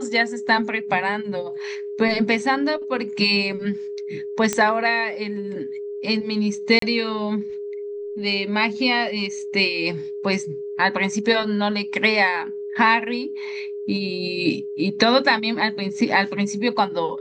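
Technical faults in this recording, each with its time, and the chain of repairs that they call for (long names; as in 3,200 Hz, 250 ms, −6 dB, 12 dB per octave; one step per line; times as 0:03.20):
whistle 410 Hz −28 dBFS
0:04.53: click −8 dBFS
0:06.79–0:06.82: drop-out 33 ms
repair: click removal
notch filter 410 Hz, Q 30
repair the gap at 0:06.79, 33 ms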